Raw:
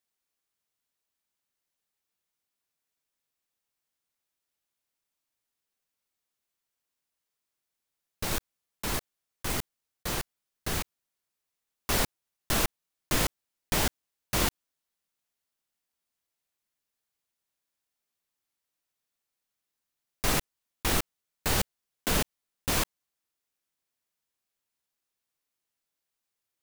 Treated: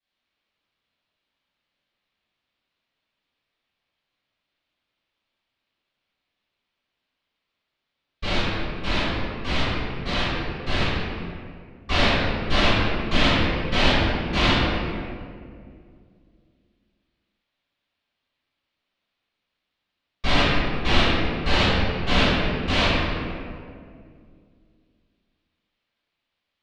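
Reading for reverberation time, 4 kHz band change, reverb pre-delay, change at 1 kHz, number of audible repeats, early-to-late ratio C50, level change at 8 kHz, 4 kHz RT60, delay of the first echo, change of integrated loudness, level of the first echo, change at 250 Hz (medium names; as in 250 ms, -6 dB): 2.2 s, +11.0 dB, 3 ms, +10.0 dB, no echo, -4.0 dB, -10.0 dB, 1.2 s, no echo, +7.5 dB, no echo, +12.0 dB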